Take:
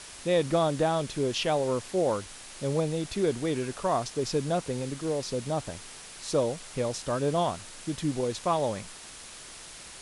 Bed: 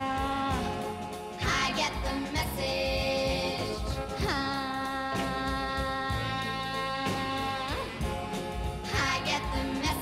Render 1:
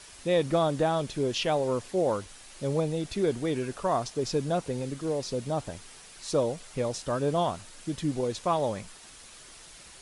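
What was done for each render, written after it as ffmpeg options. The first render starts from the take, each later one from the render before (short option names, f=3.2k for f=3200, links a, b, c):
-af "afftdn=nr=6:nf=-46"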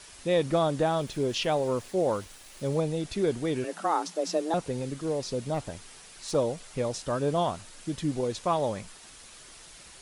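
-filter_complex "[0:a]asettb=1/sr,asplit=3[a][b][c];[a]atrim=end=0.874[d];[b]atrim=start=0.87:end=2.79,asetpts=PTS-STARTPTS,afade=t=in:d=0.004:c=qsin,afade=t=out:st=1.916:d=0.004:c=qsin,aeval=exprs='val(0)*gte(abs(val(0)),0.00316)':c=same[e];[c]atrim=start=2.786[f];[d][e]acrossfade=d=0.004:c1=hsin:c2=qsin[g];[g][f]acrossfade=d=0.004:c1=qsin:c2=hsin,asettb=1/sr,asplit=3[h][i][j];[h]atrim=end=3.644[k];[i]atrim=start=3.64:end=4.54,asetpts=PTS-STARTPTS,afade=t=in:d=0.004:c=qsin,afade=t=out:st=0.896:d=0.004:c=qsin,afreqshift=160[l];[j]atrim=start=4.536[m];[k][l]acrossfade=d=0.004:c1=hsin:c2=qsin[n];[n][m]acrossfade=d=0.004:c1=qsin:c2=hsin,asettb=1/sr,asplit=3[o][p][q];[o]atrim=end=5.544[r];[p]atrim=start=5.54:end=6.35,asetpts=PTS-STARTPTS,afade=t=in:d=0.004:c=qsin,afade=t=out:st=0.806:d=0.004:c=qsin,aeval=exprs='clip(val(0),-1,0.0316)':c=same[s];[q]atrim=start=6.346[t];[r][s]acrossfade=d=0.004:c1=hsin:c2=qsin[u];[u][t]acrossfade=d=0.004:c1=qsin:c2=hsin"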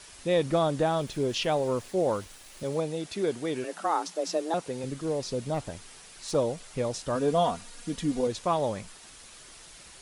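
-filter_complex "[0:a]asettb=1/sr,asplit=3[a][b][c];[a]atrim=end=2.634[d];[b]atrim=start=2.63:end=4.84,asetpts=PTS-STARTPTS,afade=t=in:d=0.004:c=qsin,afade=t=out:st=2.206:d=0.004:c=qsin,highpass=f=260:p=1[e];[c]atrim=start=4.836[f];[d][e]acrossfade=d=0.004:c1=hsin:c2=qsin[g];[g][f]acrossfade=d=0.004:c1=qsin:c2=hsin,asettb=1/sr,asplit=3[h][i][j];[h]atrim=end=7.154[k];[i]atrim=start=7.15:end=8.27,asetpts=PTS-STARTPTS,afade=t=in:d=0.004:c=qsin,afade=t=out:st=1.116:d=0.004:c=qsin,aecho=1:1:4.2:0.65,atrim=end_sample=49392[l];[j]atrim=start=8.266[m];[k][l]acrossfade=d=0.004:c1=hsin:c2=qsin[n];[n][m]acrossfade=d=0.004:c1=qsin:c2=hsin"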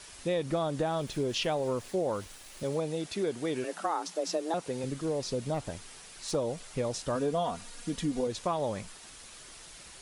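-af "acompressor=threshold=-27dB:ratio=4"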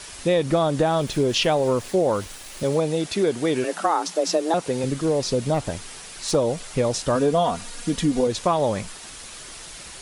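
-af "volume=10dB"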